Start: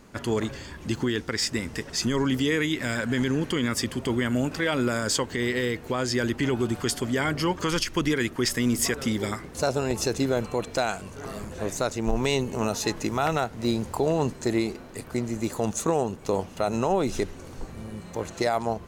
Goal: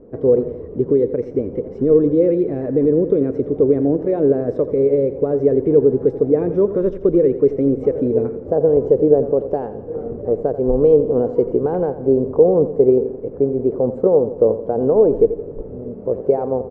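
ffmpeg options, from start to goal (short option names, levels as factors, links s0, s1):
-af "asetrate=49833,aresample=44100,lowpass=f=460:t=q:w=4.6,aecho=1:1:86|172|258|344|430:0.224|0.112|0.056|0.028|0.014,volume=1.5"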